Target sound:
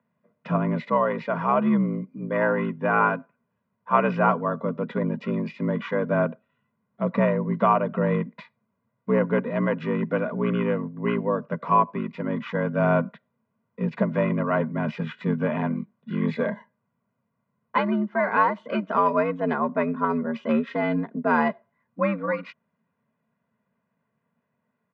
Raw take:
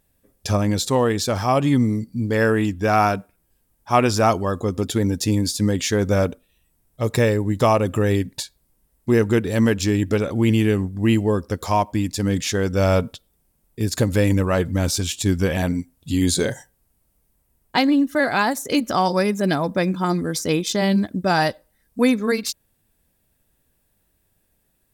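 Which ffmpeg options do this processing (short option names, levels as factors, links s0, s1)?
-filter_complex "[0:a]asplit=2[s0][s1];[s1]asetrate=22050,aresample=44100,atempo=2,volume=0.398[s2];[s0][s2]amix=inputs=2:normalize=0,aecho=1:1:2.1:0.71,afreqshift=71,highpass=f=190:w=0.5412,highpass=f=190:w=1.3066,equalizer=f=230:t=q:w=4:g=7,equalizer=f=340:t=q:w=4:g=-10,equalizer=f=540:t=q:w=4:g=-6,equalizer=f=1200:t=q:w=4:g=5,equalizer=f=1700:t=q:w=4:g=-3,lowpass=f=2100:w=0.5412,lowpass=f=2100:w=1.3066,volume=0.708"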